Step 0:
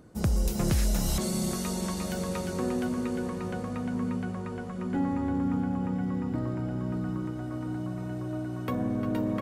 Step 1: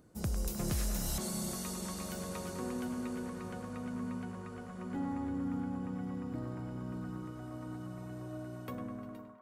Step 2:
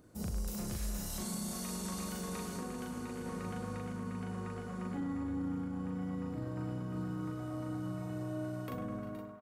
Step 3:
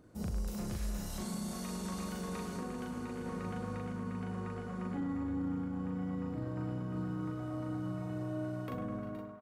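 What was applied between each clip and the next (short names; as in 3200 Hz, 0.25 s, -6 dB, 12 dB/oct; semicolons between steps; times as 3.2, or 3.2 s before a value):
ending faded out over 0.91 s; high shelf 6200 Hz +7.5 dB; narrowing echo 0.102 s, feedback 82%, band-pass 1100 Hz, level -5.5 dB; gain -9 dB
limiter -34 dBFS, peak gain reduction 9.5 dB; doubler 39 ms -2 dB; gain +1 dB
high shelf 5500 Hz -9 dB; gain +1 dB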